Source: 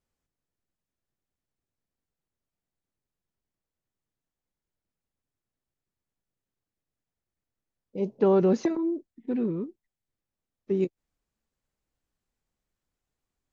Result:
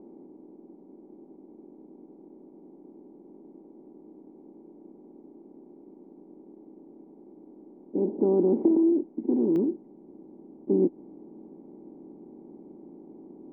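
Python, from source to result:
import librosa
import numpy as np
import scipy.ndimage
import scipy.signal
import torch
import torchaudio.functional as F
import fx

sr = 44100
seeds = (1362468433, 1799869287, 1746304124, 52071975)

y = fx.bin_compress(x, sr, power=0.4)
y = fx.formant_cascade(y, sr, vowel='u')
y = fx.peak_eq(y, sr, hz=110.0, db=fx.steps((0.0, -15.0), (9.56, -4.0)), octaves=0.94)
y = y * 10.0 ** (7.5 / 20.0)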